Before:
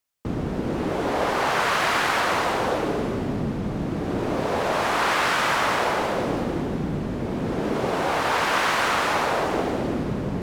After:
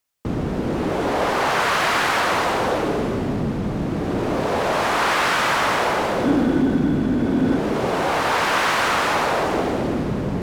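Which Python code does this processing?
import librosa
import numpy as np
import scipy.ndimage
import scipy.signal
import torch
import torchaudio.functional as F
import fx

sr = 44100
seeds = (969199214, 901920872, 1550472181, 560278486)

p1 = fx.small_body(x, sr, hz=(270.0, 1500.0, 3400.0), ring_ms=45, db=12, at=(6.24, 7.57))
p2 = np.clip(p1, -10.0 ** (-22.0 / 20.0), 10.0 ** (-22.0 / 20.0))
y = p1 + (p2 * 10.0 ** (-6.0 / 20.0))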